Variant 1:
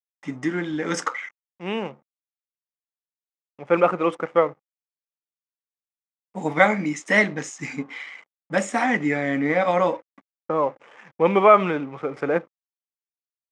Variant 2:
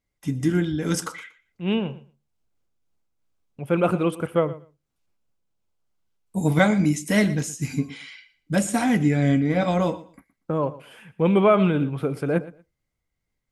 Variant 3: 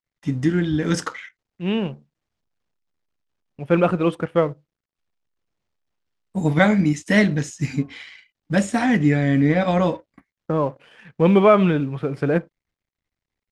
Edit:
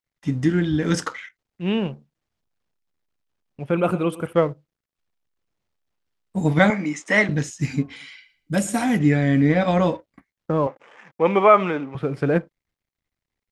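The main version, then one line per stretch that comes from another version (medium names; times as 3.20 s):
3
3.71–4.33 s: from 2
6.70–7.29 s: from 1
7.96–8.99 s: from 2
10.67–11.95 s: from 1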